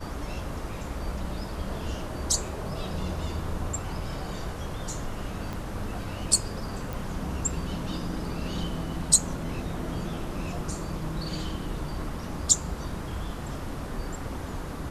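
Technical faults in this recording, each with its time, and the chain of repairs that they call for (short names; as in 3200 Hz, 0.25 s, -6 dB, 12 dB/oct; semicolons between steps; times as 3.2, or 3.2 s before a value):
5.53 pop -21 dBFS
6.93 pop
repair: de-click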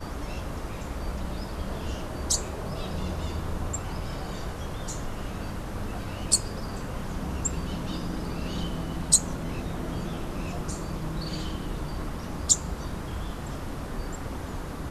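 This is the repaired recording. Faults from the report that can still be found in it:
5.53 pop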